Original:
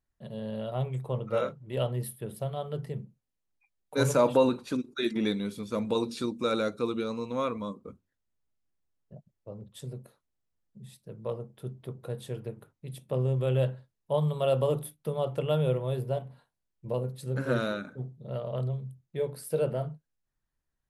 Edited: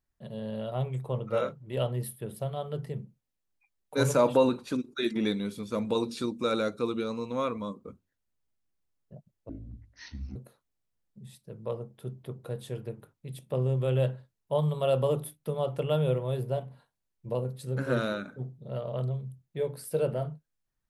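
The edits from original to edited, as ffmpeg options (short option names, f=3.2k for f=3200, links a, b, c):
-filter_complex "[0:a]asplit=3[a][b][c];[a]atrim=end=9.494[d];[b]atrim=start=9.49:end=9.95,asetpts=PTS-STARTPTS,asetrate=23373,aresample=44100,atrim=end_sample=38275,asetpts=PTS-STARTPTS[e];[c]atrim=start=9.946[f];[d][e]acrossfade=d=0.004:c1=hsin:c2=hsin[g];[g][f]acrossfade=d=0.004:c1=hsin:c2=hsin"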